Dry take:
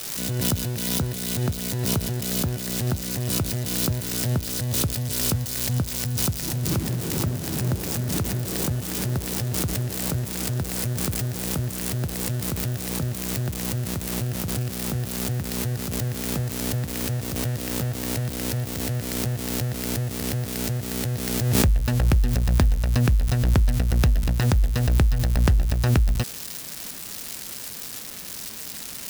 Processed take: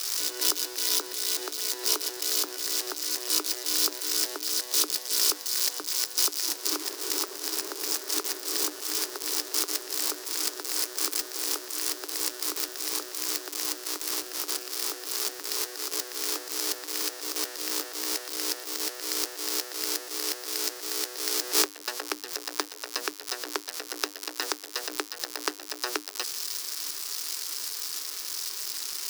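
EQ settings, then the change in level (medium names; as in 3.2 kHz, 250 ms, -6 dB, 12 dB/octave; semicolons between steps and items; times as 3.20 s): rippled Chebyshev high-pass 290 Hz, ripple 9 dB; treble shelf 2.2 kHz +9.5 dB; peaking EQ 5.1 kHz +8.5 dB 0.75 oct; -1.0 dB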